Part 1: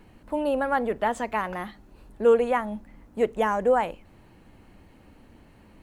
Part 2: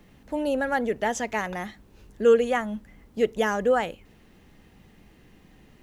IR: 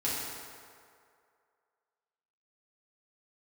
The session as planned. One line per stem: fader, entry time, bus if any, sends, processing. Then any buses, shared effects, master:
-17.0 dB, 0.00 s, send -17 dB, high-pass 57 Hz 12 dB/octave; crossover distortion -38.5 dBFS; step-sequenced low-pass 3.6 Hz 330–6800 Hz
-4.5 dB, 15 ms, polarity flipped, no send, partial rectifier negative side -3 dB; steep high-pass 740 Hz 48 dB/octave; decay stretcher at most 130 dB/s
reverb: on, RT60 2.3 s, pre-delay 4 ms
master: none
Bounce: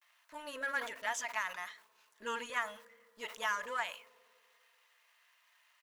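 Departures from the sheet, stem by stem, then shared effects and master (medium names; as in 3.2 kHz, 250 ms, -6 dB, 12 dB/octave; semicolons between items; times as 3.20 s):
stem 1 -17.0 dB -> -27.0 dB; master: extra Butterworth band-stop 790 Hz, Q 4.2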